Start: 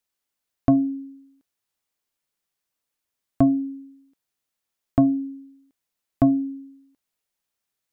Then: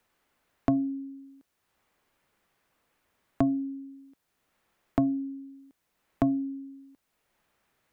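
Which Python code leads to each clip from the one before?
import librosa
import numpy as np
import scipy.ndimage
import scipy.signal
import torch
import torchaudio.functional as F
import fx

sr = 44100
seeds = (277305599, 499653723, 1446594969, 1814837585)

y = fx.band_squash(x, sr, depth_pct=70)
y = y * librosa.db_to_amplitude(-4.0)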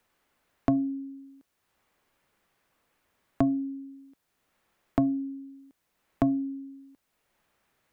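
y = fx.comb_fb(x, sr, f0_hz=560.0, decay_s=0.31, harmonics='all', damping=0.0, mix_pct=30)
y = y * librosa.db_to_amplitude(3.5)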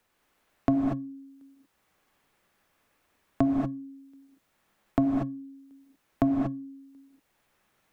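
y = fx.rev_gated(x, sr, seeds[0], gate_ms=260, shape='rising', drr_db=1.0)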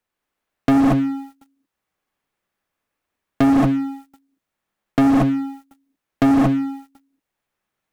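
y = fx.leveller(x, sr, passes=5)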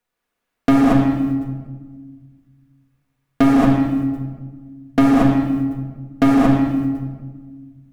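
y = fx.room_shoebox(x, sr, seeds[1], volume_m3=1400.0, walls='mixed', distance_m=1.8)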